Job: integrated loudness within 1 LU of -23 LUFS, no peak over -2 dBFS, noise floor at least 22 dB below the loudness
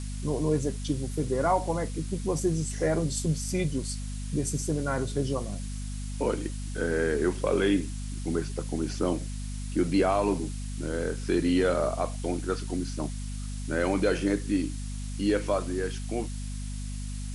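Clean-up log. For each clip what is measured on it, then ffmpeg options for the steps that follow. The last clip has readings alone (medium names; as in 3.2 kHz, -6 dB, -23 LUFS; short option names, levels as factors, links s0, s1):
hum 50 Hz; highest harmonic 250 Hz; hum level -32 dBFS; noise floor -35 dBFS; noise floor target -52 dBFS; loudness -29.5 LUFS; peak level -13.5 dBFS; loudness target -23.0 LUFS
-> -af "bandreject=f=50:t=h:w=6,bandreject=f=100:t=h:w=6,bandreject=f=150:t=h:w=6,bandreject=f=200:t=h:w=6,bandreject=f=250:t=h:w=6"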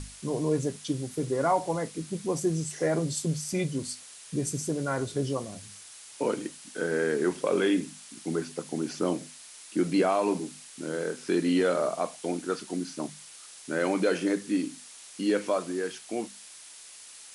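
hum not found; noise floor -48 dBFS; noise floor target -52 dBFS
-> -af "afftdn=nr=6:nf=-48"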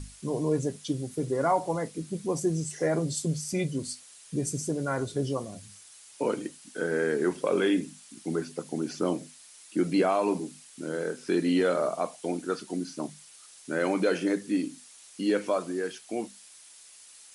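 noise floor -52 dBFS; loudness -30.0 LUFS; peak level -14.5 dBFS; loudness target -23.0 LUFS
-> -af "volume=2.24"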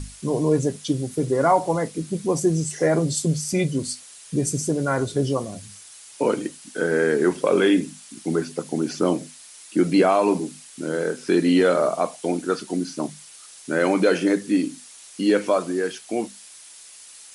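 loudness -23.0 LUFS; peak level -7.5 dBFS; noise floor -45 dBFS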